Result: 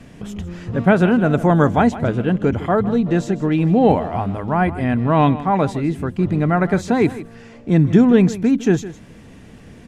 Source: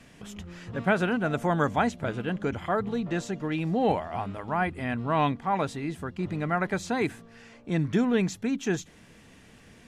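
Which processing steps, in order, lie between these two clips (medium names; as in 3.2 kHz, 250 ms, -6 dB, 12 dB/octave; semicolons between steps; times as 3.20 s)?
tilt shelf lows +5 dB, about 770 Hz; delay 158 ms -15.5 dB; trim +8.5 dB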